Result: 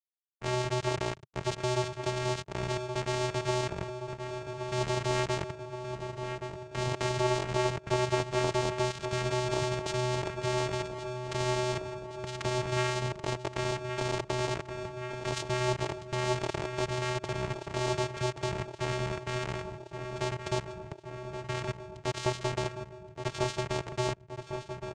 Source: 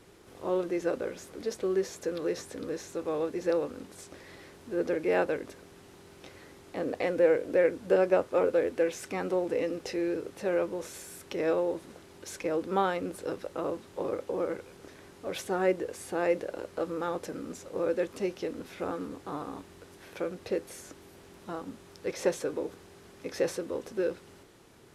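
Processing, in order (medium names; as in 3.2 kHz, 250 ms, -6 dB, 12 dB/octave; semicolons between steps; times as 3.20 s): word length cut 6-bit, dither none; vocoder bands 4, square 125 Hz; on a send: feedback delay 1123 ms, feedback 57%, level -14 dB; on the sum: spectrum-flattening compressor 2:1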